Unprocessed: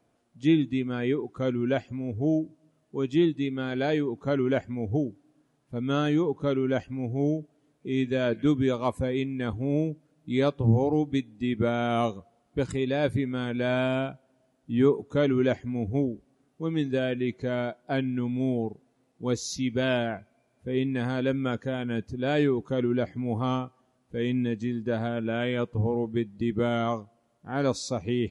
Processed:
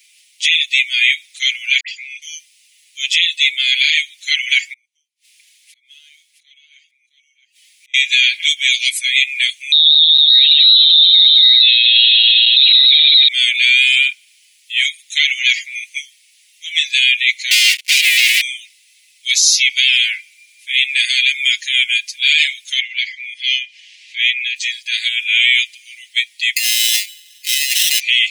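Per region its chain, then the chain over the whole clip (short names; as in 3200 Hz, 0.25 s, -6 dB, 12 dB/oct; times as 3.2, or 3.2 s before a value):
1.8–2.22 air absorption 94 m + dispersion highs, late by 84 ms, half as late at 1700 Hz
4.73–7.94 flipped gate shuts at -35 dBFS, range -35 dB + echo 0.665 s -7.5 dB
9.72–13.28 regenerating reverse delay 0.114 s, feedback 61%, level -6 dB + inverted band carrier 4000 Hz + sustainer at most 36 dB/s
17.51–18.41 comb 4.7 ms, depth 68% + sample leveller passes 5
22.79–24.56 steep high-pass 1600 Hz 96 dB/oct + air absorption 160 m + upward compressor, threshold -58 dBFS
26.56–28 negative-ratio compressor -30 dBFS, ratio -0.5 + sample-rate reducer 2300 Hz
whole clip: steep high-pass 2100 Hz 72 dB/oct; comb 5.4 ms, depth 94%; maximiser +30 dB; gain -1 dB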